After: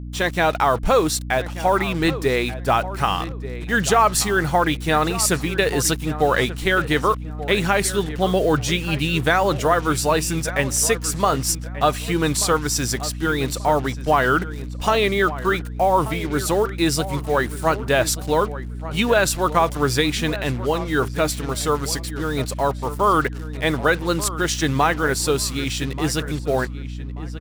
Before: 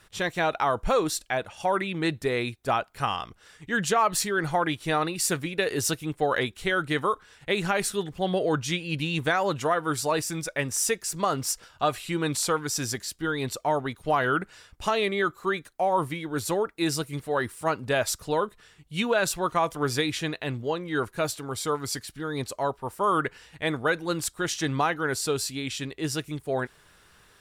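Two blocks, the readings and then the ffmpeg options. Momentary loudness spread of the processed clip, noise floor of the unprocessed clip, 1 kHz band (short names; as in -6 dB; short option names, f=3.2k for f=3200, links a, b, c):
6 LU, -58 dBFS, +6.5 dB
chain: -filter_complex "[0:a]acrusher=bits=6:mix=0:aa=0.5,aeval=exprs='val(0)+0.0141*(sin(2*PI*60*n/s)+sin(2*PI*2*60*n/s)/2+sin(2*PI*3*60*n/s)/3+sin(2*PI*4*60*n/s)/4+sin(2*PI*5*60*n/s)/5)':c=same,asplit=2[a][b];[b]adelay=1184,lowpass=f=2.6k:p=1,volume=-14dB,asplit=2[c][d];[d]adelay=1184,lowpass=f=2.6k:p=1,volume=0.27,asplit=2[e][f];[f]adelay=1184,lowpass=f=2.6k:p=1,volume=0.27[g];[a][c][e][g]amix=inputs=4:normalize=0,volume=6.5dB"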